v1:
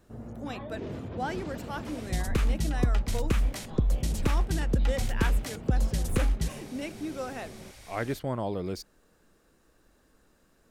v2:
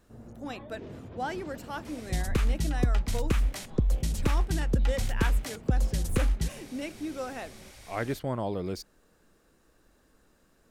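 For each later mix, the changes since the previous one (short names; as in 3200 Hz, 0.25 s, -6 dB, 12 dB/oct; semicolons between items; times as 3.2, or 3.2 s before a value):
first sound -6.0 dB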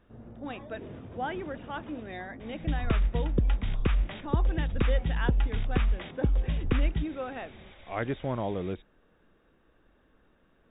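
second sound: entry +0.55 s; master: add brick-wall FIR low-pass 3800 Hz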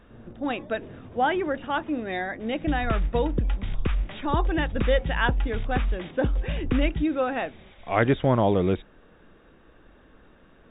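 speech +10.5 dB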